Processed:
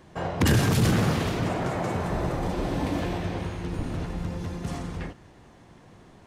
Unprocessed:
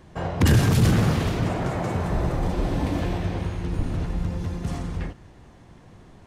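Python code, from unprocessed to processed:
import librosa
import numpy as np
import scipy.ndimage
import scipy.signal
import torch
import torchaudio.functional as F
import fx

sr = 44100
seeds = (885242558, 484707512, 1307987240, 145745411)

y = fx.low_shelf(x, sr, hz=110.0, db=-9.0)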